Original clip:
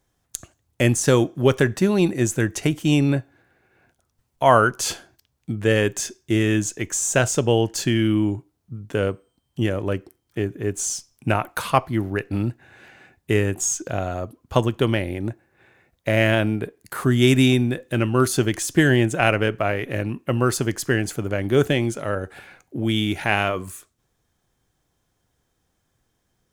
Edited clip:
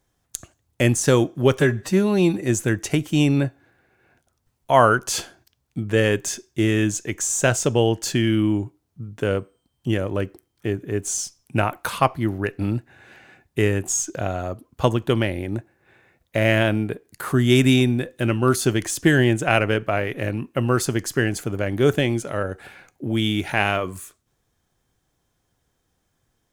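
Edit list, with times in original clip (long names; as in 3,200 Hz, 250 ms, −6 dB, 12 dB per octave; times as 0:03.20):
0:01.59–0:02.15: time-stretch 1.5×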